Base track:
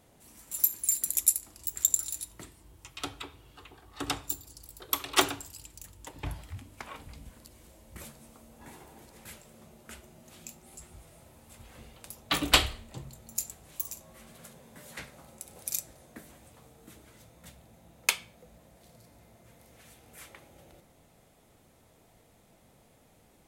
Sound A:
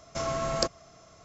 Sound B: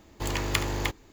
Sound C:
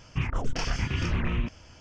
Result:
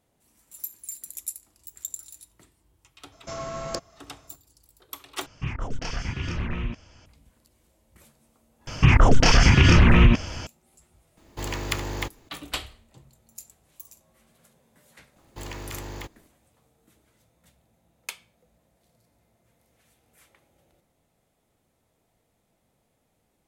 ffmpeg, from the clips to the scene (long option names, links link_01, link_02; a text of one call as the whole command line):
ffmpeg -i bed.wav -i cue0.wav -i cue1.wav -i cue2.wav -filter_complex "[3:a]asplit=2[link_01][link_02];[2:a]asplit=2[link_03][link_04];[0:a]volume=-10dB[link_05];[1:a]aeval=exprs='(tanh(3.55*val(0)+0.35)-tanh(0.35))/3.55':channel_layout=same[link_06];[link_02]alimiter=level_in=21.5dB:limit=-1dB:release=50:level=0:latency=1[link_07];[link_04]alimiter=limit=-18dB:level=0:latency=1:release=25[link_08];[link_05]asplit=2[link_09][link_10];[link_09]atrim=end=5.264[link_11];[link_01]atrim=end=1.8,asetpts=PTS-STARTPTS,volume=-2dB[link_12];[link_10]atrim=start=7.056[link_13];[link_06]atrim=end=1.24,asetpts=PTS-STARTPTS,volume=-2.5dB,afade=type=in:duration=0.004:curve=hsin,afade=type=out:start_time=1.236:duration=0.004:curve=hsin,adelay=3120[link_14];[link_07]atrim=end=1.8,asetpts=PTS-STARTPTS,volume=-5dB,afade=type=in:duration=0.004:curve=hsin,afade=type=out:start_time=1.796:duration=0.004:curve=hsin,adelay=8670[link_15];[link_03]atrim=end=1.12,asetpts=PTS-STARTPTS,volume=-1.5dB,afade=type=in:duration=0.004:curve=hsin,afade=type=out:start_time=1.116:duration=0.004:curve=hsin,adelay=11170[link_16];[link_08]atrim=end=1.12,asetpts=PTS-STARTPTS,volume=-7dB,afade=type=in:duration=0.004:curve=hsin,afade=type=out:start_time=1.116:duration=0.004:curve=hsin,adelay=15160[link_17];[link_11][link_12]acrossfade=duration=0.004:curve1=hsin:curve2=hsin[link_18];[link_18][link_13]acrossfade=duration=0.004:curve1=hsin:curve2=hsin[link_19];[link_19][link_14][link_15][link_16][link_17]amix=inputs=5:normalize=0" out.wav